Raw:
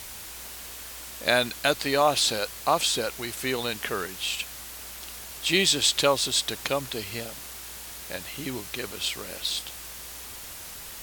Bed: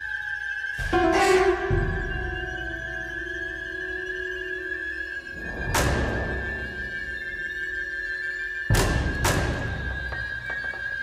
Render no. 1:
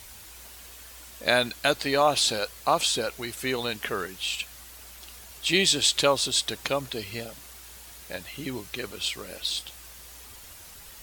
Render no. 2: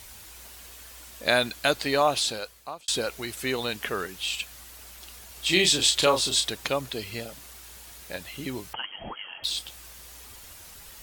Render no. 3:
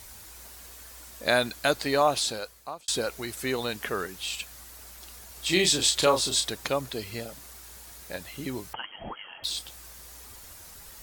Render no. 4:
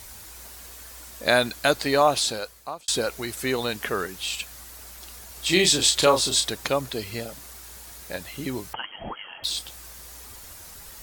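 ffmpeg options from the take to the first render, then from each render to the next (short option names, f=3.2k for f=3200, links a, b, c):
-af "afftdn=nr=7:nf=-41"
-filter_complex "[0:a]asettb=1/sr,asplit=3[a][b][c];[a]atrim=end=5.334[d];[b]atrim=start=5.33:end=6.49,asetpts=PTS-STARTPTS,afade=t=in:d=0.004:c=qsin,afade=t=out:st=1.156:d=0.004:c=qsin,asplit=2[e][f];[f]adelay=33,volume=-6dB[g];[e][g]amix=inputs=2:normalize=0,atrim=end_sample=51156[h];[c]atrim=start=6.486[i];[d][h]acrossfade=d=0.004:c1=hsin:c2=qsin[j];[j][i]acrossfade=d=0.004:c1=qsin:c2=hsin,asettb=1/sr,asplit=3[k][l][m];[k]atrim=end=8.734[n];[l]atrim=start=8.73:end=9.44,asetpts=PTS-STARTPTS,afade=t=in:d=0.004:c=qsin,afade=t=out:st=0.706:d=0.004:c=qsin,lowpass=f=2.8k:t=q:w=0.5098,lowpass=f=2.8k:t=q:w=0.6013,lowpass=f=2.8k:t=q:w=0.9,lowpass=f=2.8k:t=q:w=2.563,afreqshift=-3300[o];[m]atrim=start=9.436[p];[n][o]acrossfade=d=0.004:c1=hsin:c2=qsin[q];[q][p]acrossfade=d=0.004:c1=qsin:c2=hsin,asplit=2[r][s];[r]atrim=end=2.88,asetpts=PTS-STARTPTS,afade=t=out:st=1.97:d=0.91[t];[s]atrim=start=2.88,asetpts=PTS-STARTPTS,afade=t=in:d=0.004:c=hsin[u];[t][u]concat=n=2:v=0:a=1"
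-af "equalizer=f=2.9k:t=o:w=0.85:g=-5"
-af "volume=3.5dB"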